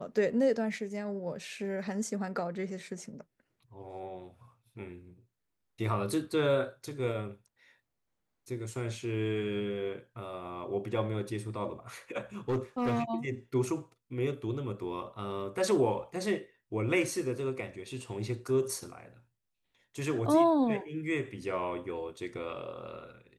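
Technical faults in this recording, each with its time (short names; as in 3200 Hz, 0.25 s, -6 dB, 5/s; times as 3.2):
12.49–13.03 clipped -26 dBFS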